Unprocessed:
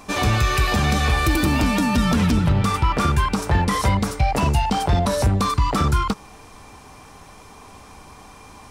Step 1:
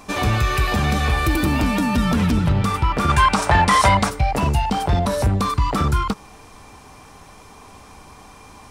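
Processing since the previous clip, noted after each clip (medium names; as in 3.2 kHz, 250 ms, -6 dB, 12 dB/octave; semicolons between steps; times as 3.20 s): time-frequency box 3.09–4.09 s, 540–10000 Hz +9 dB; dynamic bell 6 kHz, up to -4 dB, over -35 dBFS, Q 0.86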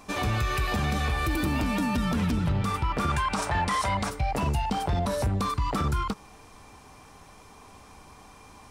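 peak limiter -12 dBFS, peak gain reduction 8.5 dB; trim -6.5 dB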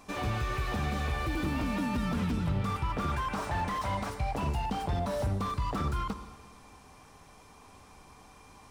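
plate-style reverb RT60 1.7 s, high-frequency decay 0.9×, DRR 11 dB; slew-rate limiter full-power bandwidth 54 Hz; trim -4.5 dB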